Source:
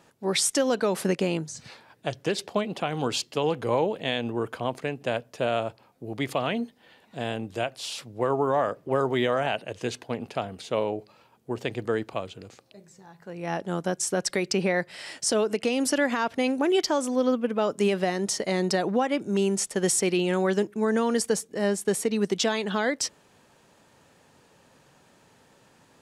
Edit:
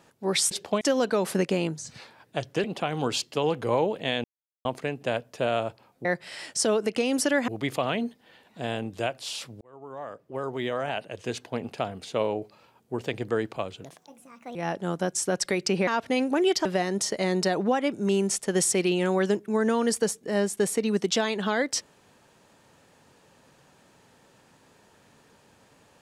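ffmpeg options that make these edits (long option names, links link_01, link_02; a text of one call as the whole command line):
ffmpeg -i in.wav -filter_complex "[0:a]asplit=13[link_01][link_02][link_03][link_04][link_05][link_06][link_07][link_08][link_09][link_10][link_11][link_12][link_13];[link_01]atrim=end=0.512[link_14];[link_02]atrim=start=2.338:end=2.642[link_15];[link_03]atrim=start=0.508:end=2.342[link_16];[link_04]atrim=start=2.638:end=4.24,asetpts=PTS-STARTPTS,afade=type=out:start_time=1.598:duration=0.004:curve=hsin[link_17];[link_05]atrim=start=4.24:end=4.65,asetpts=PTS-STARTPTS,volume=0[link_18];[link_06]atrim=start=4.65:end=6.052,asetpts=PTS-STARTPTS,afade=type=in:duration=0.004:curve=hsin[link_19];[link_07]atrim=start=14.718:end=16.152[link_20];[link_08]atrim=start=6.048:end=8.18,asetpts=PTS-STARTPTS,afade=type=out:start_time=2.128:duration=0.004:curve=hsin[link_21];[link_09]atrim=start=8.18:end=12.414,asetpts=PTS-STARTPTS,afade=type=in:duration=1.99[link_22];[link_10]atrim=start=12.41:end=13.4,asetpts=PTS-STARTPTS,asetrate=61299,aresample=44100,atrim=end_sample=31409,asetpts=PTS-STARTPTS[link_23];[link_11]atrim=start=13.396:end=14.722[link_24];[link_12]atrim=start=16.148:end=16.932[link_25];[link_13]atrim=start=17.928[link_26];[link_14][link_15]acrossfade=duration=0.004:curve1=hsin:curve2=hsin[link_27];[link_27][link_16]acrossfade=duration=0.004:curve1=hsin:curve2=hsin[link_28];[link_17][link_18][link_19]concat=n=3:v=0:a=1[link_29];[link_28][link_29]acrossfade=duration=0.004:curve1=hsin:curve2=hsin[link_30];[link_30][link_20]acrossfade=duration=0.004:curve1=hsin:curve2=hsin[link_31];[link_21][link_22]concat=n=2:v=0:a=1[link_32];[link_31][link_32]acrossfade=duration=0.004:curve1=hsin:curve2=hsin[link_33];[link_33][link_23]acrossfade=duration=0.004:curve1=hsin:curve2=hsin[link_34];[link_34][link_24]acrossfade=duration=0.004:curve1=hsin:curve2=hsin[link_35];[link_35][link_25]acrossfade=duration=0.004:curve1=hsin:curve2=hsin[link_36];[link_36][link_26]acrossfade=duration=0.004:curve1=hsin:curve2=hsin" out.wav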